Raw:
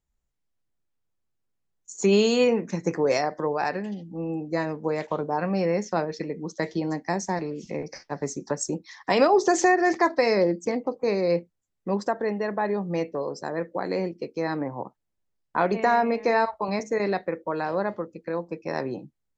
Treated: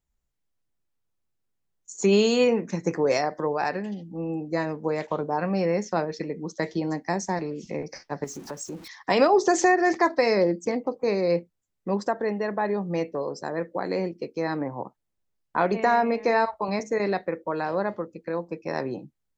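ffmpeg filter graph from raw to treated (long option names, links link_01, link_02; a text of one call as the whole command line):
ffmpeg -i in.wav -filter_complex "[0:a]asettb=1/sr,asplit=3[link_01][link_02][link_03];[link_01]atrim=end=8.244[link_04];[link_02]atrim=start=8.24:end=8.88,asetpts=PTS-STARTPTS,afade=type=in:duration=0.004:curve=qsin,afade=type=out:start_time=0.636:duration=0.004:curve=qsin,aeval=exprs='val(0)+0.5*0.0119*sgn(val(0))':channel_layout=same,acompressor=threshold=-38dB:ratio=2:attack=3.2:release=140:knee=1:detection=peak[link_05];[link_03]atrim=start=8.876[link_06];[link_04][link_05]acrossfade=duration=0.004:curve1=hsin:curve2=qsin[link_07];[link_07][link_06]acrossfade=duration=0.004:curve1=qsin:curve2=hsin" out.wav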